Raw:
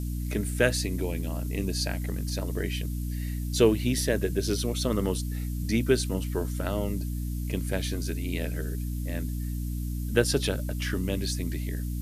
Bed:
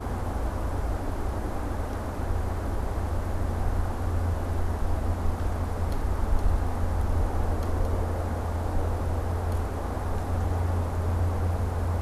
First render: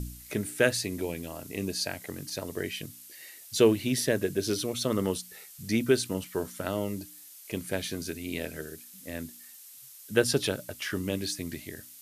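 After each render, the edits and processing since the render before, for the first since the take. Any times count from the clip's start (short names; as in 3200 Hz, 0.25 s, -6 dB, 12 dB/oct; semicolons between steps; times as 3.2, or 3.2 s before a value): de-hum 60 Hz, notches 5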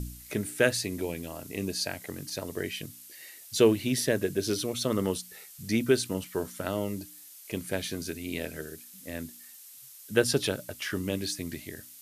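nothing audible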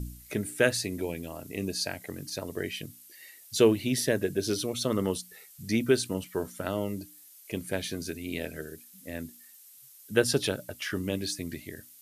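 denoiser 6 dB, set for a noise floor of -50 dBFS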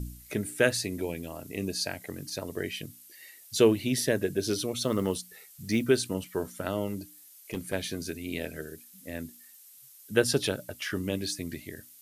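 4.85–5.84 short-mantissa float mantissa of 4-bit; 6.87–7.73 hard clip -25.5 dBFS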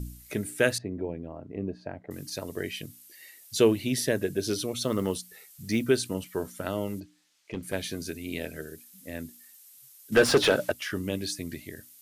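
0.78–2.11 LPF 1000 Hz; 7–7.63 air absorption 140 m; 10.12–10.72 overdrive pedal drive 25 dB, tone 1800 Hz, clips at -9 dBFS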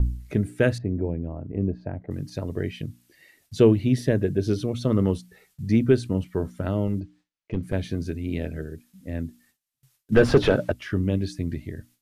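RIAA curve playback; gate with hold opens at -52 dBFS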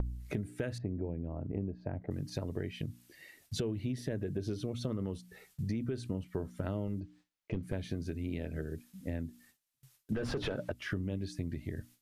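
limiter -14 dBFS, peak gain reduction 9 dB; compressor 6:1, threshold -33 dBFS, peak gain reduction 14 dB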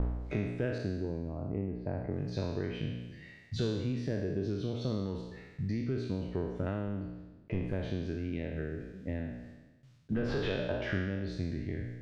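spectral trails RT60 1.18 s; air absorption 160 m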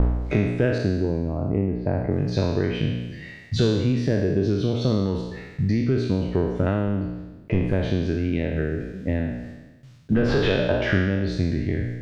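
gain +12 dB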